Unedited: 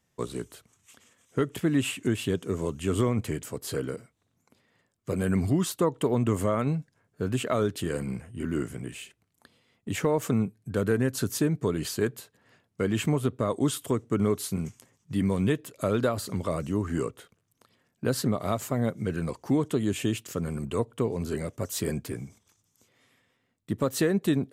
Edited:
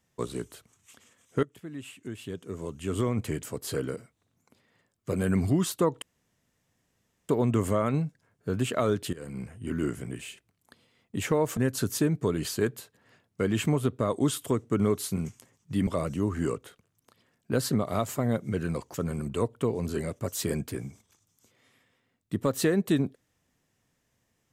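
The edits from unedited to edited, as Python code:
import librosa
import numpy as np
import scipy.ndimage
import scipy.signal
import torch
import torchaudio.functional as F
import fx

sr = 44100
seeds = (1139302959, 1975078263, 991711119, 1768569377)

y = fx.edit(x, sr, fx.fade_in_from(start_s=1.43, length_s=1.94, curve='qua', floor_db=-16.5),
    fx.insert_room_tone(at_s=6.02, length_s=1.27),
    fx.fade_in_from(start_s=7.86, length_s=0.43, floor_db=-18.5),
    fx.cut(start_s=10.3, length_s=0.67),
    fx.cut(start_s=15.27, length_s=1.13),
    fx.cut(start_s=19.47, length_s=0.84), tone=tone)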